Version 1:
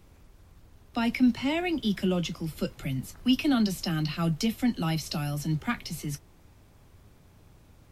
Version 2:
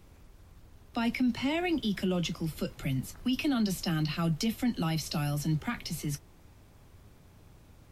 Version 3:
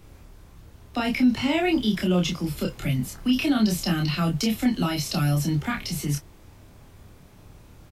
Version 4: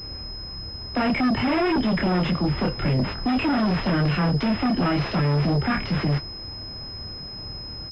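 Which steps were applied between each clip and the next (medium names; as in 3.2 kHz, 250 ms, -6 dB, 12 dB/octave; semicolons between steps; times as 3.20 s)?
peak limiter -21.5 dBFS, peak gain reduction 8.5 dB
doubling 28 ms -2.5 dB; trim +5 dB
saturation -14.5 dBFS, distortion -20 dB; Chebyshev shaper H 5 -8 dB, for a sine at -15.5 dBFS; class-D stage that switches slowly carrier 5.1 kHz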